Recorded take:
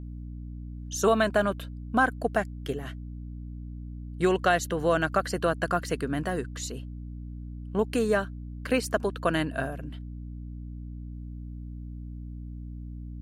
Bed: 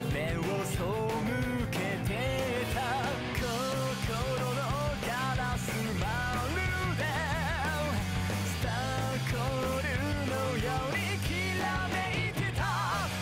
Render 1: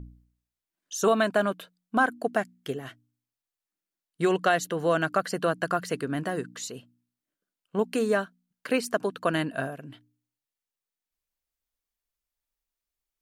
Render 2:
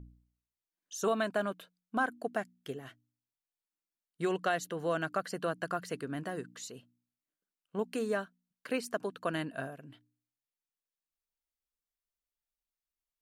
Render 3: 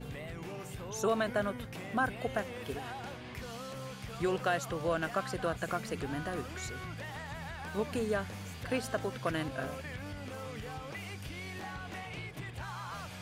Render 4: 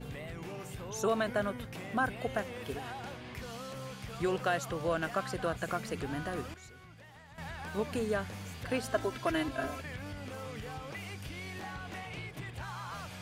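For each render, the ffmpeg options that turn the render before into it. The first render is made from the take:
-af "bandreject=f=60:t=h:w=4,bandreject=f=120:t=h:w=4,bandreject=f=180:t=h:w=4,bandreject=f=240:t=h:w=4,bandreject=f=300:t=h:w=4"
-af "volume=0.398"
-filter_complex "[1:a]volume=0.282[s0];[0:a][s0]amix=inputs=2:normalize=0"
-filter_complex "[0:a]asettb=1/sr,asplit=3[s0][s1][s2];[s0]atrim=end=8.944[s3];[s1]atrim=start=8.94:end=9.81,asetpts=PTS-STARTPTS,afade=t=in:d=0.004:c=qsin,afade=t=out:st=0.866:d=0.004:c=qsin,aecho=1:1:3:0.74,atrim=end_sample=38367[s4];[s2]atrim=start=9.806[s5];[s3][s4]acrossfade=d=0.004:c1=hsin:c2=qsin[s6];[s6][s5]acrossfade=d=0.004:c1=qsin:c2=hsin,asplit=3[s7][s8][s9];[s7]atrim=end=6.542[s10];[s8]atrim=start=6.538:end=7.382,asetpts=PTS-STARTPTS,volume=0.251[s11];[s9]atrim=start=7.378[s12];[s10][s11]acrossfade=d=0.004:c1=hsin:c2=hsin[s13];[s13][s12]acrossfade=d=0.004:c1=hsin:c2=hsin"

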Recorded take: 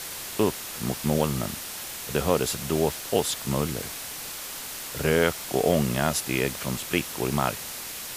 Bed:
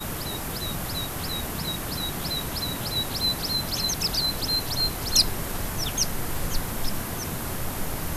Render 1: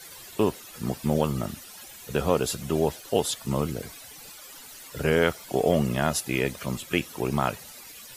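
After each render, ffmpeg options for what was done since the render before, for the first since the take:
-af "afftdn=nr=14:nf=-37"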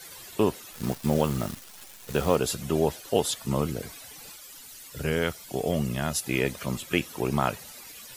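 -filter_complex "[0:a]asettb=1/sr,asplit=3[s0][s1][s2];[s0]atrim=end=0.734[s3];[s1]atrim=start=0.73:end=2.36,asetpts=PTS-STARTPTS,afade=t=in:d=0.004:c=qsin,afade=t=out:st=1.626:d=0.004:c=qsin,acrusher=bits=7:dc=4:mix=0:aa=0.000001[s4];[s2]atrim=start=2.356[s5];[s3][s4]acrossfade=d=0.004:c1=hsin:c2=qsin[s6];[s6][s5]acrossfade=d=0.004:c1=qsin:c2=hsin,asettb=1/sr,asplit=3[s7][s8][s9];[s7]atrim=end=4.364[s10];[s8]atrim=start=4.36:end=6.23,asetpts=PTS-STARTPTS,afade=t=in:d=0.004:c=qsin,afade=t=out:st=1.866:d=0.004:c=qsin,equalizer=f=720:w=0.32:g=-6.5[s11];[s9]atrim=start=6.226[s12];[s10][s11]acrossfade=d=0.004:c1=hsin:c2=qsin[s13];[s13][s12]acrossfade=d=0.004:c1=qsin:c2=hsin"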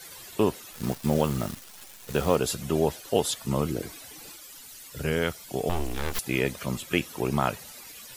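-filter_complex "[0:a]asettb=1/sr,asplit=3[s0][s1][s2];[s0]atrim=end=3.704[s3];[s1]atrim=start=3.7:end=4.46,asetpts=PTS-STARTPTS,afade=t=in:d=0.004:c=qsin,afade=t=out:st=0.756:d=0.004:c=qsin,equalizer=f=330:w=3.2:g=9[s4];[s2]atrim=start=4.456[s5];[s3][s4]acrossfade=d=0.004:c1=hsin:c2=qsin[s6];[s6][s5]acrossfade=d=0.004:c1=qsin:c2=hsin,asettb=1/sr,asplit=3[s7][s8][s9];[s7]atrim=end=5.694[s10];[s8]atrim=start=5.69:end=6.19,asetpts=PTS-STARTPTS,afade=t=in:d=0.004:c=qsin,afade=t=out:st=0.496:d=0.004:c=qsin,aeval=exprs='abs(val(0))':c=same[s11];[s9]atrim=start=6.186[s12];[s10][s11]acrossfade=d=0.004:c1=hsin:c2=qsin[s13];[s13][s12]acrossfade=d=0.004:c1=qsin:c2=hsin"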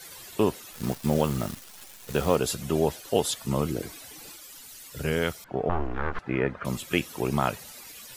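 -filter_complex "[0:a]asettb=1/sr,asplit=3[s0][s1][s2];[s0]atrim=end=5.444[s3];[s1]atrim=start=5.44:end=6.65,asetpts=PTS-STARTPTS,afade=t=in:d=0.004:c=qsin,afade=t=out:st=1.206:d=0.004:c=qsin,lowpass=f=1400:t=q:w=2.2[s4];[s2]atrim=start=6.646[s5];[s3][s4]acrossfade=d=0.004:c1=hsin:c2=qsin[s6];[s6][s5]acrossfade=d=0.004:c1=qsin:c2=hsin"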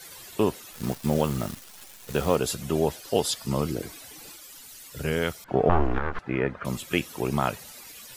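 -filter_complex "[0:a]asettb=1/sr,asplit=3[s0][s1][s2];[s0]atrim=end=3.024[s3];[s1]atrim=start=3.02:end=3.75,asetpts=PTS-STARTPTS,afade=t=in:d=0.004:c=qsin,afade=t=out:st=0.726:d=0.004:c=qsin,equalizer=f=4900:w=4.8:g=7[s4];[s2]atrim=start=3.746[s5];[s3][s4]acrossfade=d=0.004:c1=hsin:c2=qsin[s6];[s6][s5]acrossfade=d=0.004:c1=qsin:c2=hsin,asettb=1/sr,asplit=3[s7][s8][s9];[s7]atrim=end=5.484[s10];[s8]atrim=start=5.48:end=5.99,asetpts=PTS-STARTPTS,afade=t=in:d=0.004:c=qsin,afade=t=out:st=0.506:d=0.004:c=qsin,acontrast=67[s11];[s9]atrim=start=5.986[s12];[s10][s11]acrossfade=d=0.004:c1=hsin:c2=qsin[s13];[s13][s12]acrossfade=d=0.004:c1=qsin:c2=hsin"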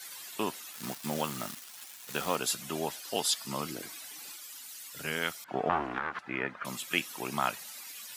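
-af "highpass=310,equalizer=f=450:w=1.1:g=-11.5"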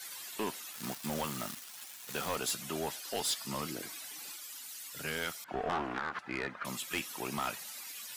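-af "asoftclip=type=tanh:threshold=0.0422"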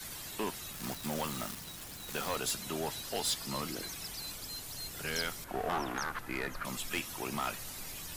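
-filter_complex "[1:a]volume=0.106[s0];[0:a][s0]amix=inputs=2:normalize=0"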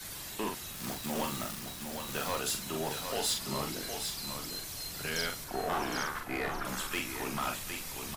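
-filter_complex "[0:a]asplit=2[s0][s1];[s1]adelay=43,volume=0.562[s2];[s0][s2]amix=inputs=2:normalize=0,aecho=1:1:761:0.473"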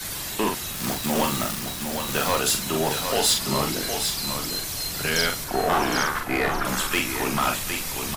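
-af "volume=3.55"

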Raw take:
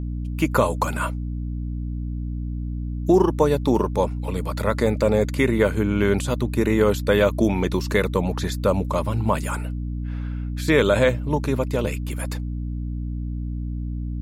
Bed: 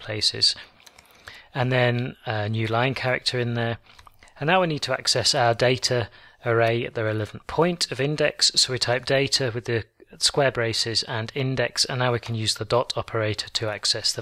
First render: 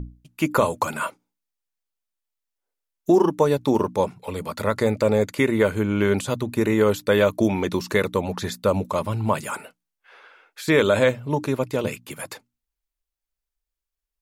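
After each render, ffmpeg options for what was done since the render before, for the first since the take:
-af "bandreject=f=60:t=h:w=6,bandreject=f=120:t=h:w=6,bandreject=f=180:t=h:w=6,bandreject=f=240:t=h:w=6,bandreject=f=300:t=h:w=6"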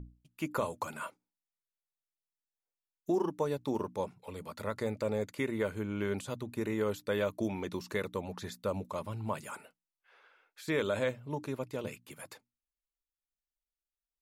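-af "volume=0.211"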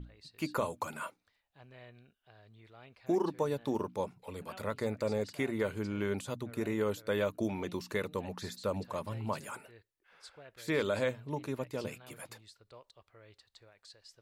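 -filter_complex "[1:a]volume=0.0224[s0];[0:a][s0]amix=inputs=2:normalize=0"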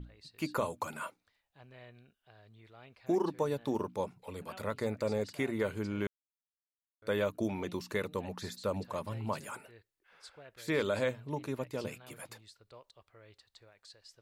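-filter_complex "[0:a]asplit=3[s0][s1][s2];[s0]atrim=end=6.07,asetpts=PTS-STARTPTS,afade=t=out:st=6.066:d=0.004:c=hsin[s3];[s1]atrim=start=6.07:end=7.02,asetpts=PTS-STARTPTS,volume=0[s4];[s2]atrim=start=7.02,asetpts=PTS-STARTPTS,afade=t=in:d=0.004:c=hsin[s5];[s3][s4][s5]concat=n=3:v=0:a=1"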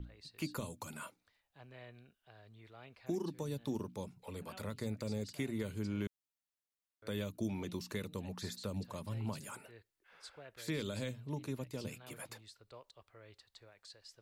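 -filter_complex "[0:a]acrossover=split=280|3000[s0][s1][s2];[s1]acompressor=threshold=0.00501:ratio=6[s3];[s0][s3][s2]amix=inputs=3:normalize=0"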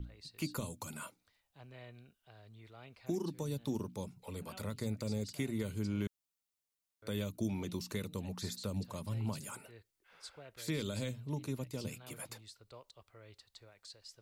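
-af "bass=f=250:g=3,treble=f=4000:g=4,bandreject=f=1700:w=16"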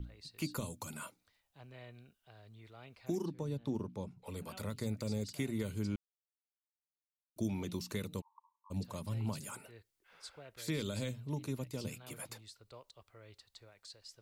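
-filter_complex "[0:a]asettb=1/sr,asplit=3[s0][s1][s2];[s0]atrim=end=3.264[s3];[s1]atrim=start=3.26:end=4.26,asetpts=PTS-STARTPTS,afade=t=in:d=0.004:c=qsin,afade=t=out:st=0.996:d=0.004:c=qsin,lowpass=f=1900:p=1[s4];[s2]atrim=start=4.256[s5];[s3][s4]acrossfade=d=0.004:c1=hsin:c2=qsin[s6];[s6][s5]acrossfade=d=0.004:c1=qsin:c2=hsin,asplit=3[s7][s8][s9];[s7]afade=t=out:st=8.2:d=0.02[s10];[s8]asuperpass=centerf=1000:order=12:qfactor=4,afade=t=in:st=8.2:d=0.02,afade=t=out:st=8.7:d=0.02[s11];[s9]afade=t=in:st=8.7:d=0.02[s12];[s10][s11][s12]amix=inputs=3:normalize=0,asplit=3[s13][s14][s15];[s13]atrim=end=5.96,asetpts=PTS-STARTPTS,afade=t=out:st=5.956:d=0.004:c=hsin[s16];[s14]atrim=start=5.96:end=7.36,asetpts=PTS-STARTPTS,volume=0[s17];[s15]atrim=start=7.36,asetpts=PTS-STARTPTS,afade=t=in:d=0.004:c=hsin[s18];[s16][s17][s18]concat=n=3:v=0:a=1"

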